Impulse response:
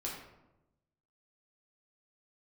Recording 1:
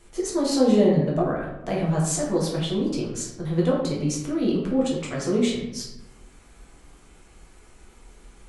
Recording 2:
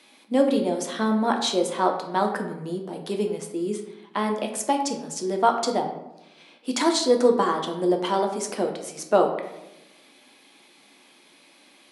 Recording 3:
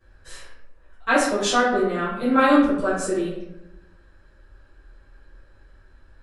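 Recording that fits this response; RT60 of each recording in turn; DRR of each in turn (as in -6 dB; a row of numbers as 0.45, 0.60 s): 1; 0.95, 0.95, 0.95 s; -4.5, 3.0, -14.0 dB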